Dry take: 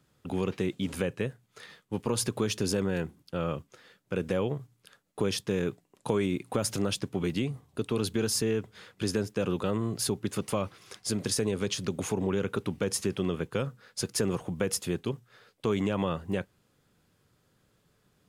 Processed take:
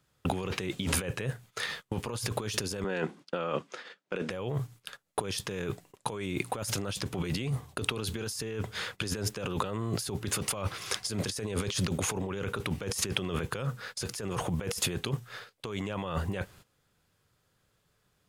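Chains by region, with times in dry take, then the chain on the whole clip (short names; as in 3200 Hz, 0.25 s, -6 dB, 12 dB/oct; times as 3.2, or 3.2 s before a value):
2.84–4.3 HPF 200 Hz 24 dB/oct + air absorption 87 m
whole clip: gate -56 dBFS, range -16 dB; bell 250 Hz -7.5 dB 1.8 oct; negative-ratio compressor -41 dBFS, ratio -1; gain +8 dB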